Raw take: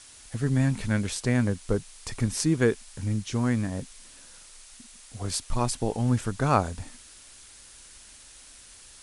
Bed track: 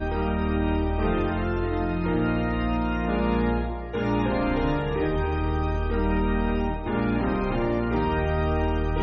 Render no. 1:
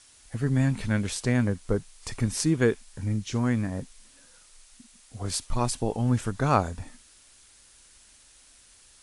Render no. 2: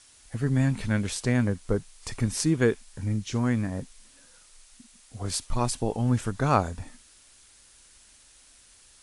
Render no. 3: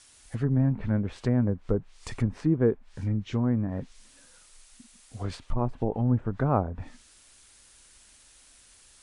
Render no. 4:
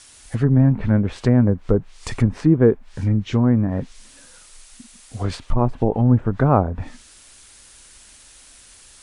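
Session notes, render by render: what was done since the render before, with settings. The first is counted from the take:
noise print and reduce 6 dB
no audible change
low-pass that closes with the level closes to 830 Hz, closed at -22 dBFS; dynamic bell 5.3 kHz, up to -5 dB, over -58 dBFS, Q 1.5
trim +9 dB; peak limiter -3 dBFS, peak gain reduction 1 dB

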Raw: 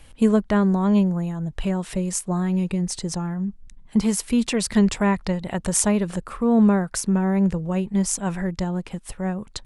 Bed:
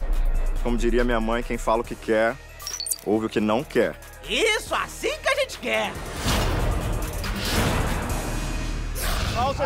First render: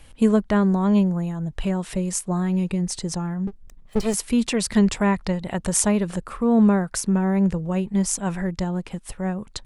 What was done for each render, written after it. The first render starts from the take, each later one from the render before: 3.47–4.14 s: comb filter that takes the minimum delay 1.6 ms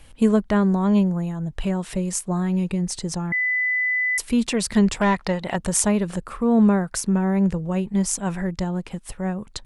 3.32–4.18 s: bleep 2 kHz -19 dBFS; 5.00–5.56 s: overdrive pedal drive 14 dB, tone 3.2 kHz, clips at -10 dBFS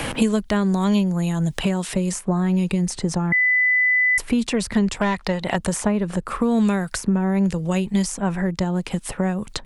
three bands compressed up and down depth 100%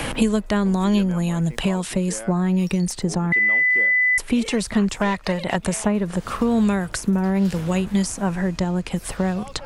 add bed -15.5 dB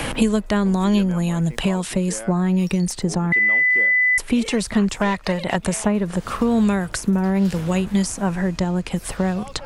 trim +1 dB

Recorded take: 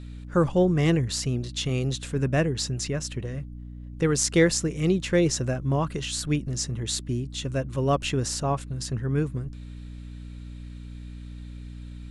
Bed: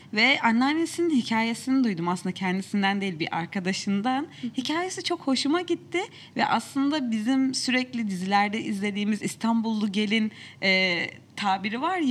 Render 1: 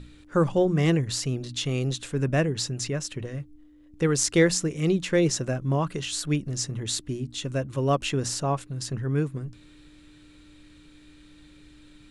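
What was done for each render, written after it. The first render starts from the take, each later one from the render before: hum notches 60/120/180/240 Hz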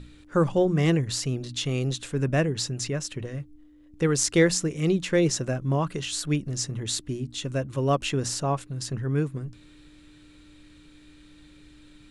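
no audible change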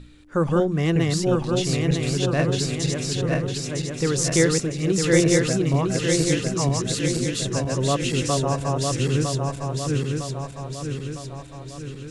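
backward echo that repeats 478 ms, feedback 73%, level -1 dB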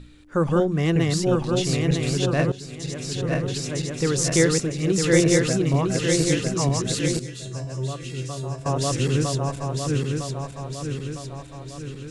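2.52–3.46 s: fade in, from -18.5 dB; 7.19–8.66 s: feedback comb 130 Hz, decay 0.39 s, harmonics odd, mix 80%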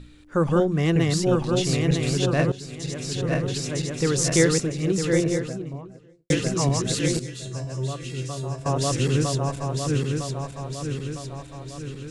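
4.45–6.30 s: studio fade out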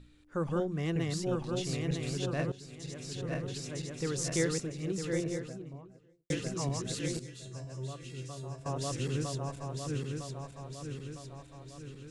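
trim -11.5 dB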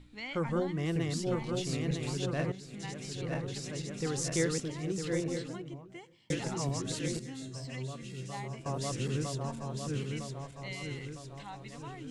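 add bed -21.5 dB

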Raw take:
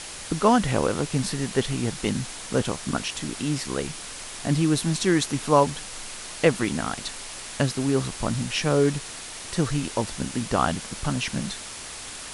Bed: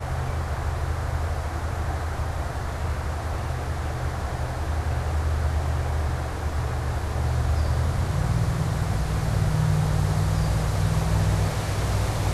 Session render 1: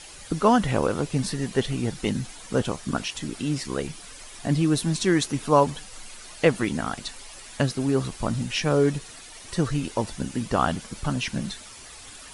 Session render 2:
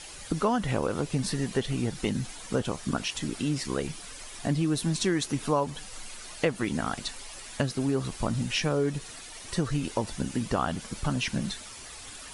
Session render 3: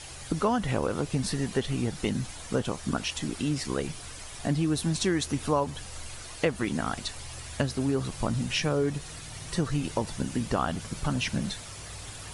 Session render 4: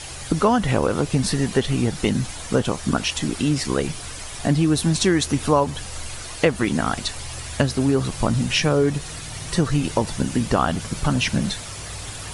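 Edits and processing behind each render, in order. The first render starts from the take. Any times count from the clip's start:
noise reduction 10 dB, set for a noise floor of -38 dBFS
compression 3:1, threshold -24 dBFS, peak gain reduction 9 dB
add bed -21.5 dB
trim +8 dB

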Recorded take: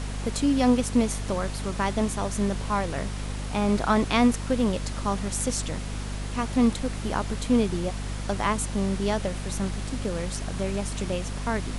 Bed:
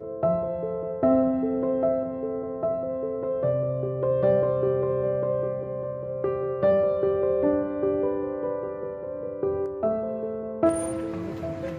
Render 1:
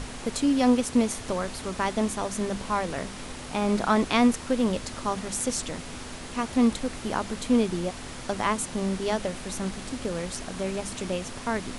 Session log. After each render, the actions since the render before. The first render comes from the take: hum notches 50/100/150/200 Hz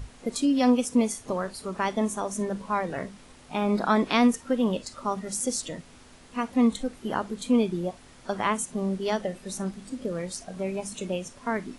noise print and reduce 13 dB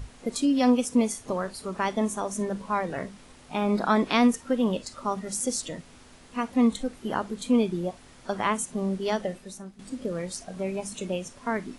9.32–9.79 s: fade out quadratic, to -13 dB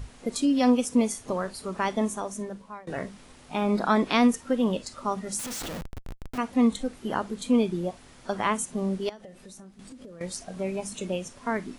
2.01–2.87 s: fade out, to -24 dB; 5.39–6.38 s: Schmitt trigger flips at -42.5 dBFS; 9.09–10.21 s: compression, threshold -42 dBFS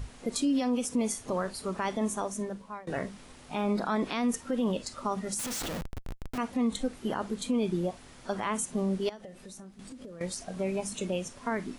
peak limiter -20.5 dBFS, peak gain reduction 11 dB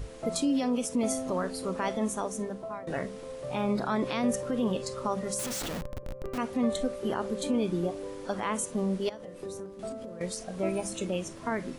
add bed -13.5 dB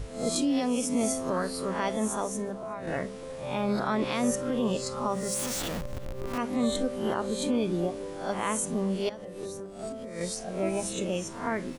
reverse spectral sustain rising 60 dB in 0.49 s; echo from a far wall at 63 m, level -22 dB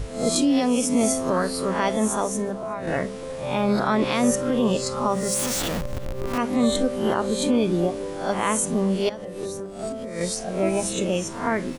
trim +6.5 dB

